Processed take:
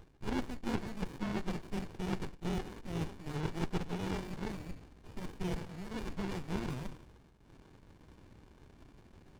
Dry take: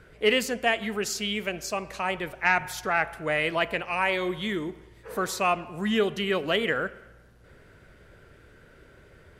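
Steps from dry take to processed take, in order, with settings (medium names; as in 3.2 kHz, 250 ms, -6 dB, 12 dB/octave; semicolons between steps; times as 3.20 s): split-band scrambler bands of 2 kHz; reverse; compression 6:1, threshold -32 dBFS, peak gain reduction 14.5 dB; reverse; resonant low shelf 310 Hz -7 dB, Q 3; in parallel at -7 dB: hysteresis with a dead band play -44.5 dBFS; on the sum: tape spacing loss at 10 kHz 25 dB; sliding maximum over 65 samples; trim +3 dB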